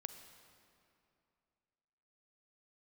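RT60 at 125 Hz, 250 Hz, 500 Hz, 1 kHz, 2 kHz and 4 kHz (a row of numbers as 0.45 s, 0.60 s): 2.7 s, 2.7 s, 2.7 s, 2.6 s, 2.3 s, 1.9 s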